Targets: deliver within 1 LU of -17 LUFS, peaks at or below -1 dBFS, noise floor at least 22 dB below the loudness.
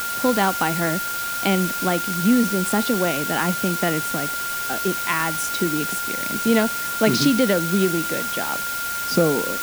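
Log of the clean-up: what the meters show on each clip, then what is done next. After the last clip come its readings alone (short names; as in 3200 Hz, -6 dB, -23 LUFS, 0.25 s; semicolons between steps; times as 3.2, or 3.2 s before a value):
steady tone 1400 Hz; tone level -26 dBFS; noise floor -27 dBFS; noise floor target -43 dBFS; loudness -21.0 LUFS; peak -4.5 dBFS; loudness target -17.0 LUFS
-> notch 1400 Hz, Q 30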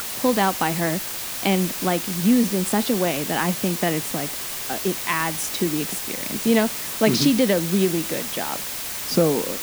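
steady tone none; noise floor -30 dBFS; noise floor target -44 dBFS
-> denoiser 14 dB, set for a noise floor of -30 dBFS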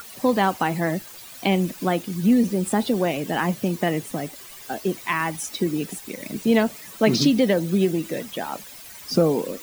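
noise floor -42 dBFS; noise floor target -45 dBFS
-> denoiser 6 dB, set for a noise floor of -42 dBFS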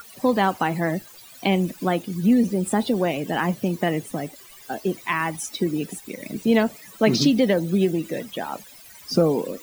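noise floor -46 dBFS; loudness -23.0 LUFS; peak -5.5 dBFS; loudness target -17.0 LUFS
-> gain +6 dB; limiter -1 dBFS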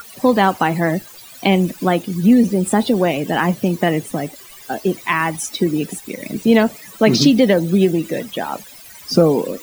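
loudness -17.0 LUFS; peak -1.0 dBFS; noise floor -40 dBFS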